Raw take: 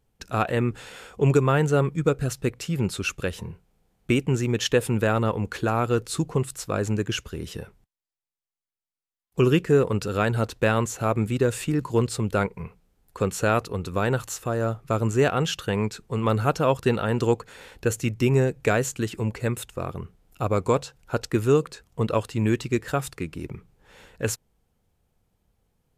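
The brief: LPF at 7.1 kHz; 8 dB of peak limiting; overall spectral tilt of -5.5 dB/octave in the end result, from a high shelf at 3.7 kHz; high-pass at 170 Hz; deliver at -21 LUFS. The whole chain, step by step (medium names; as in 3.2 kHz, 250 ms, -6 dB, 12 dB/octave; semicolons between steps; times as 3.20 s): high-pass 170 Hz; low-pass 7.1 kHz; treble shelf 3.7 kHz -5.5 dB; trim +8 dB; peak limiter -6.5 dBFS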